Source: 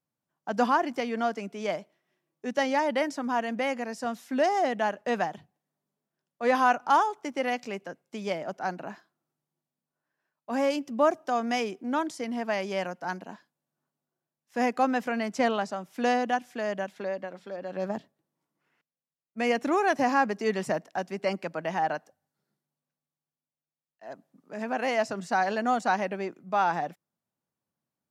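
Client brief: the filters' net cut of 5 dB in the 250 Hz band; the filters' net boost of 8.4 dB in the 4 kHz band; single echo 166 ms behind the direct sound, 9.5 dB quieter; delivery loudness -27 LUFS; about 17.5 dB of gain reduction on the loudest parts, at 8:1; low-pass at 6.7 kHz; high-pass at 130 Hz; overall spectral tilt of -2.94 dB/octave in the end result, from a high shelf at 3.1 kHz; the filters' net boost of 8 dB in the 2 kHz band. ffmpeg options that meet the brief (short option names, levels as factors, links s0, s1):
-af "highpass=130,lowpass=6700,equalizer=f=250:t=o:g=-5.5,equalizer=f=2000:t=o:g=7.5,highshelf=f=3100:g=4,equalizer=f=4000:t=o:g=6,acompressor=threshold=0.02:ratio=8,aecho=1:1:166:0.335,volume=3.55"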